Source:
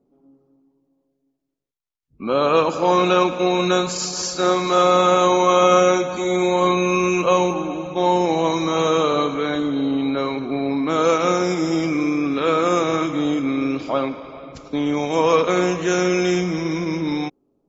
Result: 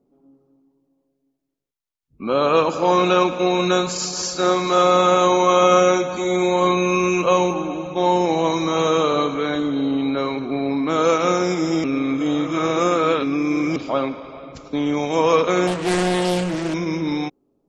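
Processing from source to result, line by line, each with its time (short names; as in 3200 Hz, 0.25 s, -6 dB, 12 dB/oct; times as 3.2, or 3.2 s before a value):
11.84–13.76 reverse
15.67–16.74 Doppler distortion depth 0.62 ms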